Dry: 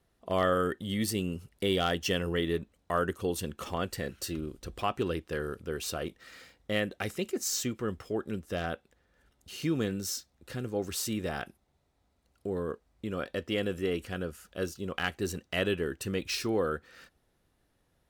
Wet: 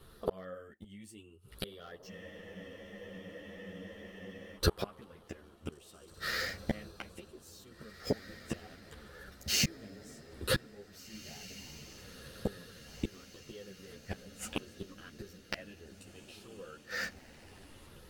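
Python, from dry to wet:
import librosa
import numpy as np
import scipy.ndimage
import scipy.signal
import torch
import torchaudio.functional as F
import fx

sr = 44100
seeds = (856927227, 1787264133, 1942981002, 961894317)

y = fx.spec_ripple(x, sr, per_octave=0.63, drift_hz=0.67, depth_db=9)
y = fx.gate_flip(y, sr, shuts_db=-29.0, range_db=-37)
y = fx.echo_diffused(y, sr, ms=1958, feedback_pct=54, wet_db=-14.5)
y = fx.spec_freeze(y, sr, seeds[0], at_s=2.12, hold_s=2.45)
y = fx.ensemble(y, sr)
y = y * 10.0 ** (17.5 / 20.0)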